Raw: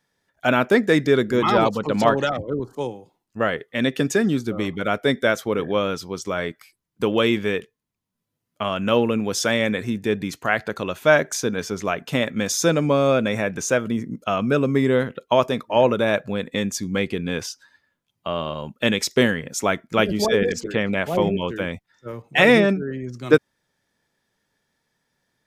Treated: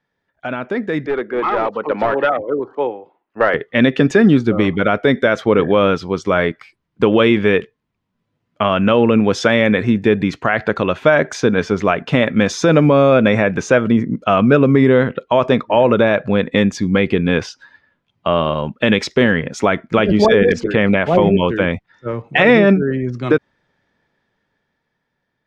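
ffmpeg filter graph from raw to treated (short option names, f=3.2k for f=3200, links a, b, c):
-filter_complex "[0:a]asettb=1/sr,asplit=3[a][b][c];[a]atrim=end=1.064[d];[b]atrim=start=1.06:end=3.54,asetpts=PTS-STARTPTS,afade=t=in:d=0.004:c=qsin,afade=t=out:st=2.476:d=0.004:c=qsin,acrossover=split=310 2900:gain=0.0891 1 0.0794[e][f][g];[e][f][g]amix=inputs=3:normalize=0,aeval=exprs='clip(val(0),-1,0.133)':c=same[h];[c]atrim=start=3.536[i];[d][h]acrossfade=d=0.004:c1=hsin:c2=qsin[j];[j][i]acrossfade=d=0.004:c1=qsin:c2=hsin,lowpass=2.9k,alimiter=limit=-12.5dB:level=0:latency=1:release=71,dynaudnorm=f=420:g=9:m=13dB"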